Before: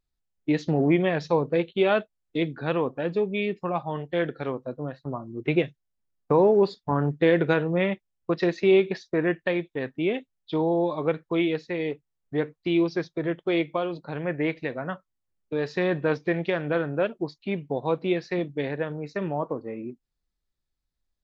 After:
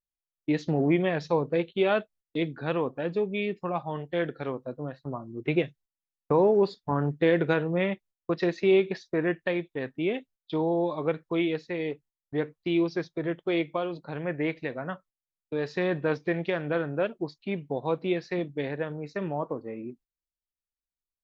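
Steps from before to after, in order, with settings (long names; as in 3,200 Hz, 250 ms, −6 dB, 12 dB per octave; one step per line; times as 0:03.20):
noise gate −50 dBFS, range −16 dB
level −2.5 dB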